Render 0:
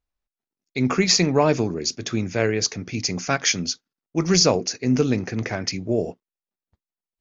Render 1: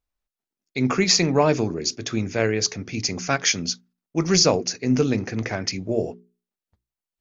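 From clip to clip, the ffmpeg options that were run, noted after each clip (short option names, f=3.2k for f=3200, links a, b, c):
-af "bandreject=f=60:t=h:w=6,bandreject=f=120:t=h:w=6,bandreject=f=180:t=h:w=6,bandreject=f=240:t=h:w=6,bandreject=f=300:t=h:w=6,bandreject=f=360:t=h:w=6,bandreject=f=420:t=h:w=6"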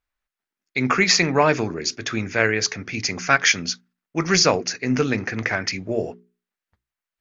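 -af "equalizer=f=1.7k:w=0.8:g=11.5,volume=-2dB"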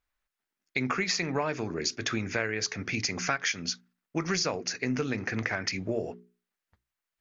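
-af "acompressor=threshold=-27dB:ratio=5"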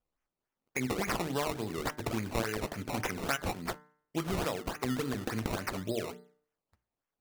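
-af "acrusher=samples=19:mix=1:aa=0.000001:lfo=1:lforange=19:lforate=3.5,bandreject=f=149.8:t=h:w=4,bandreject=f=299.6:t=h:w=4,bandreject=f=449.4:t=h:w=4,bandreject=f=599.2:t=h:w=4,bandreject=f=749:t=h:w=4,bandreject=f=898.8:t=h:w=4,bandreject=f=1.0486k:t=h:w=4,bandreject=f=1.1984k:t=h:w=4,bandreject=f=1.3482k:t=h:w=4,bandreject=f=1.498k:t=h:w=4,bandreject=f=1.6478k:t=h:w=4,bandreject=f=1.7976k:t=h:w=4,bandreject=f=1.9474k:t=h:w=4,bandreject=f=2.0972k:t=h:w=4,volume=-3dB"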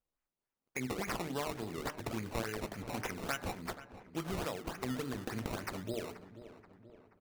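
-filter_complex "[0:a]asplit=2[a][b];[b]adelay=480,lowpass=f=2.6k:p=1,volume=-14dB,asplit=2[c][d];[d]adelay=480,lowpass=f=2.6k:p=1,volume=0.54,asplit=2[e][f];[f]adelay=480,lowpass=f=2.6k:p=1,volume=0.54,asplit=2[g][h];[h]adelay=480,lowpass=f=2.6k:p=1,volume=0.54,asplit=2[i][j];[j]adelay=480,lowpass=f=2.6k:p=1,volume=0.54[k];[a][c][e][g][i][k]amix=inputs=6:normalize=0,volume=-5dB"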